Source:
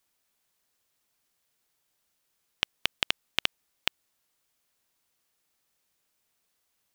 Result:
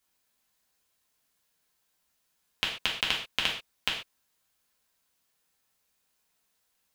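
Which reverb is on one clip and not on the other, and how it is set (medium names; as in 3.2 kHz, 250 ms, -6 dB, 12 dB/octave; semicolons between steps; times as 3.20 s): gated-style reverb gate 160 ms falling, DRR -3 dB; trim -3.5 dB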